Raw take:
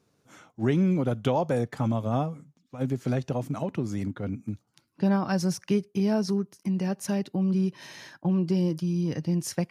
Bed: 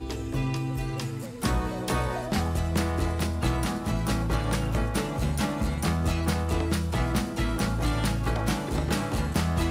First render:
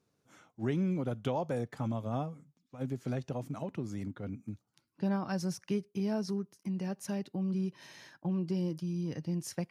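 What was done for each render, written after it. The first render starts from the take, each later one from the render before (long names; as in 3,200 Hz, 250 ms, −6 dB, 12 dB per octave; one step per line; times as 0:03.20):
level −8 dB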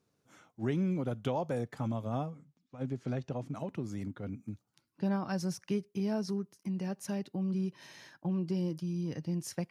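0:02.30–0:03.55: high-frequency loss of the air 64 metres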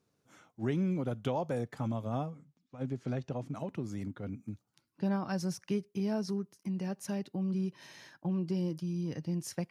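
no processing that can be heard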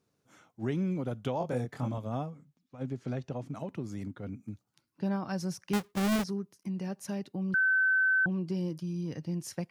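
0:01.38–0:01.98: double-tracking delay 24 ms −3.5 dB
0:05.73–0:06.24: each half-wave held at its own peak
0:07.54–0:08.26: beep over 1,530 Hz −22.5 dBFS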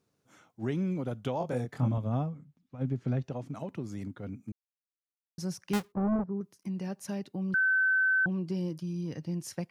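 0:01.78–0:03.23: bass and treble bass +7 dB, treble −7 dB
0:04.52–0:05.38: silence
0:05.92–0:06.41: low-pass filter 1,100 Hz 24 dB per octave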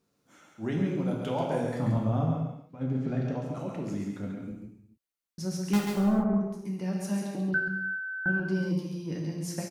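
single-tap delay 137 ms −5 dB
reverb whose tail is shaped and stops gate 330 ms falling, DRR 0 dB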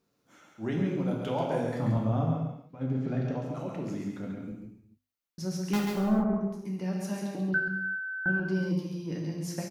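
parametric band 8,800 Hz −5 dB 0.61 octaves
mains-hum notches 50/100/150/200/250 Hz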